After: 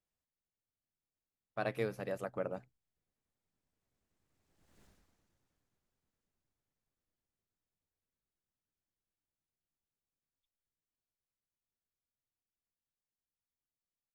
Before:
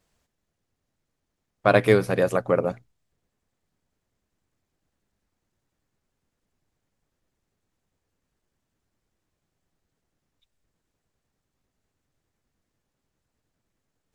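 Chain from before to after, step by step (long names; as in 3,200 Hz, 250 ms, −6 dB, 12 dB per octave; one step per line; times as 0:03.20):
source passing by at 0:04.83, 17 m/s, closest 1.5 metres
level +13 dB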